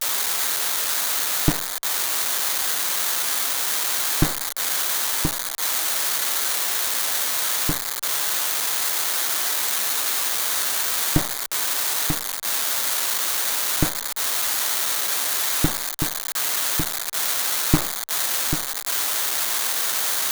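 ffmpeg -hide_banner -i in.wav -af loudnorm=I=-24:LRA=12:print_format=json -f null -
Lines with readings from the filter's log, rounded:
"input_i" : "-20.8",
"input_tp" : "-1.4",
"input_lra" : "0.7",
"input_thresh" : "-30.8",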